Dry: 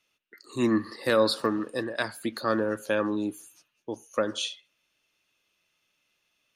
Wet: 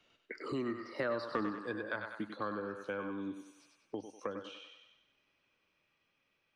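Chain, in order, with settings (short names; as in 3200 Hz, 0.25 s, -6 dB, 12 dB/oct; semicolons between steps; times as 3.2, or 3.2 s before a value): Doppler pass-by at 1.42, 23 m/s, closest 2.8 m; dynamic EQ 1500 Hz, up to +6 dB, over -56 dBFS, Q 1.1; overloaded stage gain 18 dB; tape spacing loss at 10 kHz 25 dB; thinning echo 96 ms, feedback 42%, high-pass 470 Hz, level -6 dB; three-band squash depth 100%; gain +2 dB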